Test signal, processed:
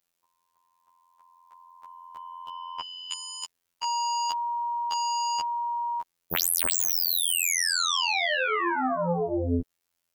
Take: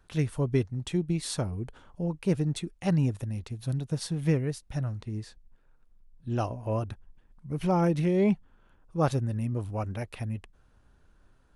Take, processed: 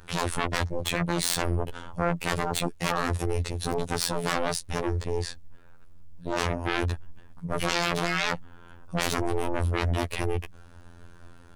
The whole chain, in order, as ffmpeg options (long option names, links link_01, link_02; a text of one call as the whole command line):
ffmpeg -i in.wav -af "aeval=exprs='0.2*sin(PI/2*10*val(0)/0.2)':channel_layout=same,afftfilt=real='hypot(re,im)*cos(PI*b)':imag='0':win_size=2048:overlap=0.75,volume=-6.5dB" out.wav